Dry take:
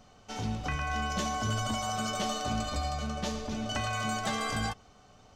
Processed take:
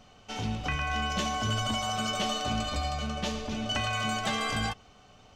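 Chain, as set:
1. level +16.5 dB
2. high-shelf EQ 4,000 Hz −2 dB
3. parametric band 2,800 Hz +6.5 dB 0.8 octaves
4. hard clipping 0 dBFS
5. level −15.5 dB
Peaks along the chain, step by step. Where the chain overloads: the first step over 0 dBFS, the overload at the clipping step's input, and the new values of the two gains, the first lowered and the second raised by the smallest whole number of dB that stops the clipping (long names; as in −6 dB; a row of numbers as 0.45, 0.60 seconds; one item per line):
−2.5, −3.0, −1.5, −1.5, −17.0 dBFS
no step passes full scale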